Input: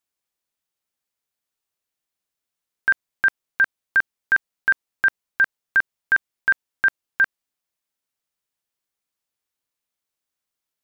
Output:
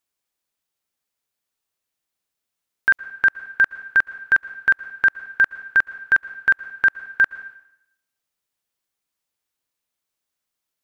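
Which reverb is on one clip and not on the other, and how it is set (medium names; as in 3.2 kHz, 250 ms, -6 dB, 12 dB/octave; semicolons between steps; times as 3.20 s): plate-style reverb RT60 0.77 s, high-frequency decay 1×, pre-delay 105 ms, DRR 16 dB; trim +2 dB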